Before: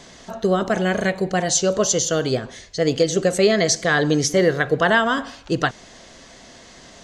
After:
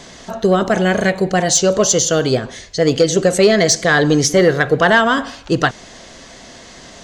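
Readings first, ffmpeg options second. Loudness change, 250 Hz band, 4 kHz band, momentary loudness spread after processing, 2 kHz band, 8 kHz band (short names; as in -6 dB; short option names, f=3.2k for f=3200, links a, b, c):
+5.0 dB, +5.0 dB, +5.0 dB, 8 LU, +5.0 dB, +5.5 dB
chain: -af "acontrast=50"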